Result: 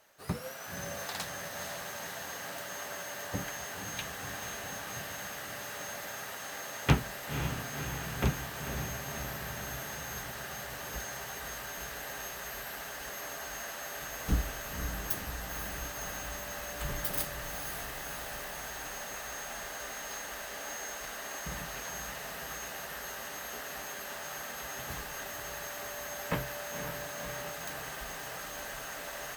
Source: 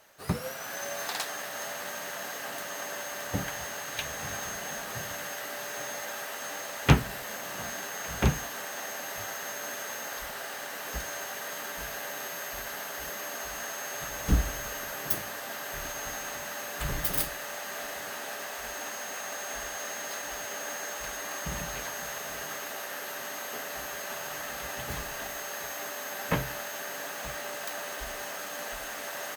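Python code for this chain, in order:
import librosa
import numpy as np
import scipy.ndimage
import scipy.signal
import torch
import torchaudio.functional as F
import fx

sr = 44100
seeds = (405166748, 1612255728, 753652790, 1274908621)

y = fx.echo_diffused(x, sr, ms=522, feedback_pct=70, wet_db=-7.0)
y = F.gain(torch.from_numpy(y), -5.0).numpy()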